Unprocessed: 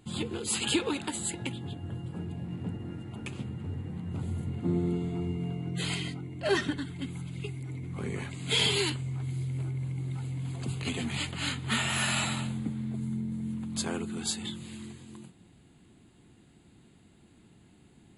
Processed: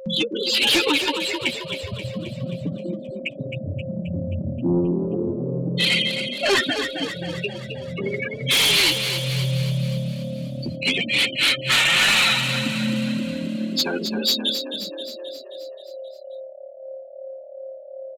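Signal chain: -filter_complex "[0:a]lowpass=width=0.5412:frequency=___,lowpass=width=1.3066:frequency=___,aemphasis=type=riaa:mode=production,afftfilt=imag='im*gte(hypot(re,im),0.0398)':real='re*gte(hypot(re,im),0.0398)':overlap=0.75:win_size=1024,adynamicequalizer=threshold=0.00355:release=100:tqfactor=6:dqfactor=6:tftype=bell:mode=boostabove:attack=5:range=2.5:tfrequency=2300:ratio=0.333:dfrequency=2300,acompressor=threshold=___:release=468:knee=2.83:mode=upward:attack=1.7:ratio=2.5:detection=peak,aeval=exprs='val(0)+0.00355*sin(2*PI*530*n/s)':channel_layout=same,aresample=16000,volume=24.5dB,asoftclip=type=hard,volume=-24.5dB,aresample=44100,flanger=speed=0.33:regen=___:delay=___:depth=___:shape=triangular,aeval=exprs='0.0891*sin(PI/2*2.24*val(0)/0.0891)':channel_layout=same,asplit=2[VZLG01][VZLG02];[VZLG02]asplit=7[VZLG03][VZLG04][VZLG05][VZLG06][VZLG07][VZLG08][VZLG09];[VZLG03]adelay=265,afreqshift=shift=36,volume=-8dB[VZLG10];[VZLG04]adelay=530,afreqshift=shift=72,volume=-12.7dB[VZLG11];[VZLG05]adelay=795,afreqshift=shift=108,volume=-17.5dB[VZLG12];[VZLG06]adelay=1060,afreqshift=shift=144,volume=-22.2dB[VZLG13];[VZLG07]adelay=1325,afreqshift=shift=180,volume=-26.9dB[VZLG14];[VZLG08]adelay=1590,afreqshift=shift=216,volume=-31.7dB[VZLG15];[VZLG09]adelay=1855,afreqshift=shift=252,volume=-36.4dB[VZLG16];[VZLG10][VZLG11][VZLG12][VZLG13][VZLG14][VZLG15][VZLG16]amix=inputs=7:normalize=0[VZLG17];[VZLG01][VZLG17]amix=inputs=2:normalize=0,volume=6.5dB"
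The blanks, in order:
4800, 4800, -32dB, 8, 5, 7.7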